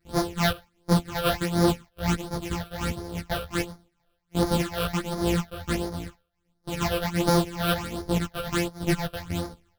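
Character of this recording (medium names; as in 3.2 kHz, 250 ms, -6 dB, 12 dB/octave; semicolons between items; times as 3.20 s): a buzz of ramps at a fixed pitch in blocks of 256 samples; phasing stages 8, 1.4 Hz, lowest notch 260–2700 Hz; tremolo triangle 2.5 Hz, depth 80%; a shimmering, thickened sound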